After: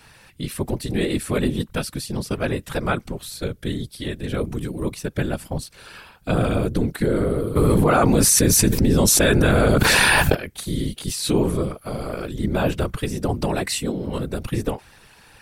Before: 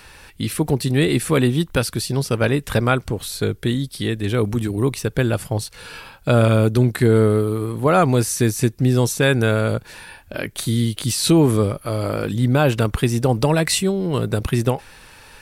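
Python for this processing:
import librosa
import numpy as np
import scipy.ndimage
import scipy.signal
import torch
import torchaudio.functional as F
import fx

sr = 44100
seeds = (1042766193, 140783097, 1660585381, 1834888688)

y = fx.whisperise(x, sr, seeds[0])
y = fx.env_flatten(y, sr, amount_pct=100, at=(7.55, 10.34), fade=0.02)
y = y * librosa.db_to_amplitude(-5.5)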